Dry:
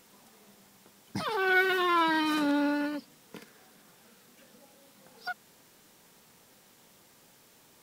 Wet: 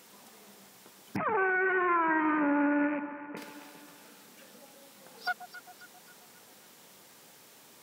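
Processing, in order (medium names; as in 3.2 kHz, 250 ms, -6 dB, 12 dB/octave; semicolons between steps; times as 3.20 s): rattle on loud lows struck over -44 dBFS, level -29 dBFS; high-pass 220 Hz 6 dB/octave; echo whose repeats swap between lows and highs 134 ms, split 980 Hz, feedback 71%, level -10.5 dB; peak limiter -23 dBFS, peak gain reduction 10 dB; 1.16–3.37 s: steep low-pass 2.2 kHz 48 dB/octave; trim +4 dB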